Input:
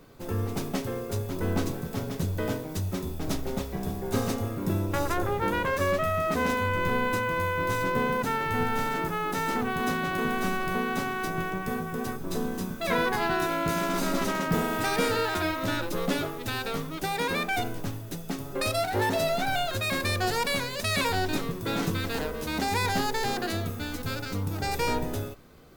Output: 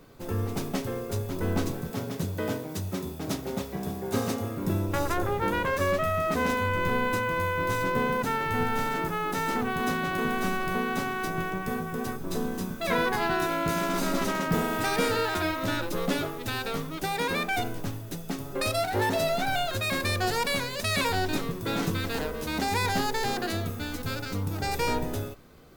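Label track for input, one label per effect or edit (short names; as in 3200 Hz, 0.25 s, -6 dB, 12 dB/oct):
1.900000	4.590000	HPF 100 Hz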